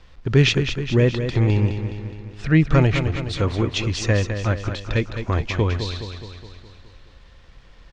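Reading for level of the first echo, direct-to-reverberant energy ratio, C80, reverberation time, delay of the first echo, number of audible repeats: -8.5 dB, no reverb, no reverb, no reverb, 209 ms, 6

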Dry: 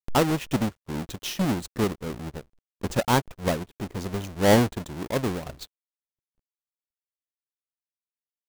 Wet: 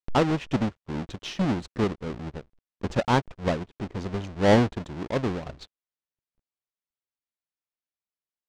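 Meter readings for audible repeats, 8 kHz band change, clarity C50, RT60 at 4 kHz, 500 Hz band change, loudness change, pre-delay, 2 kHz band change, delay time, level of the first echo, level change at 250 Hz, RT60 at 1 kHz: no echo, -10.0 dB, no reverb, no reverb, -0.5 dB, -0.5 dB, no reverb, -1.0 dB, no echo, no echo, 0.0 dB, no reverb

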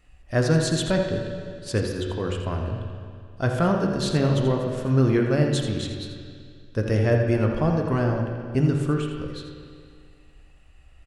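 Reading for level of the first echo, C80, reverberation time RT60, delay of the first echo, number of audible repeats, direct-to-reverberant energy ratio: -9.0 dB, 4.0 dB, 2.2 s, 83 ms, 1, 1.5 dB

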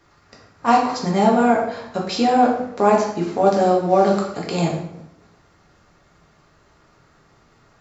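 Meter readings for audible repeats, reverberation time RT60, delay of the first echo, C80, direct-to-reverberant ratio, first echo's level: no echo, 0.75 s, no echo, 8.0 dB, -2.5 dB, no echo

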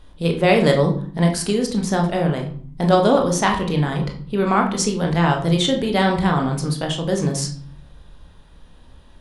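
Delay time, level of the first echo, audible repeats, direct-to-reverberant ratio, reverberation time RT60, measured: no echo, no echo, no echo, 2.0 dB, 0.50 s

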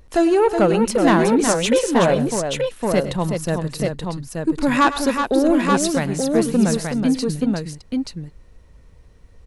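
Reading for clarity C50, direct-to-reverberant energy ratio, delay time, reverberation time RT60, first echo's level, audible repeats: no reverb, no reverb, 104 ms, no reverb, -14.5 dB, 3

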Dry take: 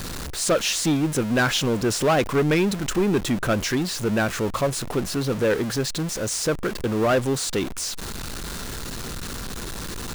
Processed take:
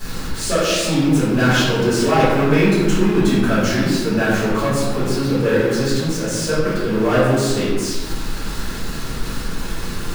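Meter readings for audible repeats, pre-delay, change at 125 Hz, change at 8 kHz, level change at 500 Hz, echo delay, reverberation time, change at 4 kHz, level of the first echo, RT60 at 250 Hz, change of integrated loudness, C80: no echo, 3 ms, +7.0 dB, +0.5 dB, +5.0 dB, no echo, 1.5 s, +3.5 dB, no echo, 2.1 s, +5.5 dB, 1.5 dB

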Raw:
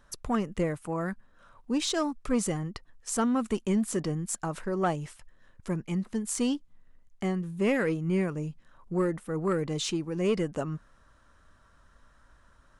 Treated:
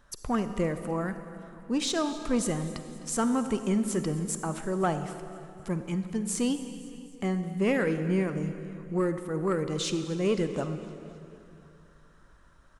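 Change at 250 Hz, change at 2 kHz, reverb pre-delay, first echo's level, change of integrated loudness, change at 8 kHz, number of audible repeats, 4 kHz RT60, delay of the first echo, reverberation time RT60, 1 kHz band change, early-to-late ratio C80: +0.5 dB, +0.5 dB, 34 ms, -20.5 dB, +0.5 dB, +0.5 dB, 4, 2.5 s, 257 ms, 2.6 s, +0.5 dB, 10.0 dB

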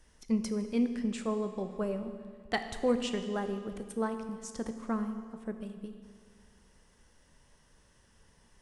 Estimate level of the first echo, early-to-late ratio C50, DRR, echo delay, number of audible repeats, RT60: no echo, 9.0 dB, 7.5 dB, no echo, no echo, 2.0 s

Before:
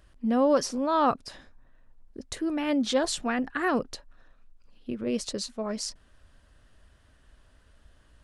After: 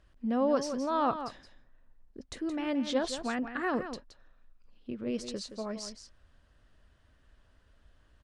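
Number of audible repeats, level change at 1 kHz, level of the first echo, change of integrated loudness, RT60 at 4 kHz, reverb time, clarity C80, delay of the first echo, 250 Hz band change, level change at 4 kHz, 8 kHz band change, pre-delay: 1, -5.0 dB, -10.0 dB, -5.0 dB, no reverb, no reverb, no reverb, 171 ms, -4.5 dB, -6.5 dB, -9.0 dB, no reverb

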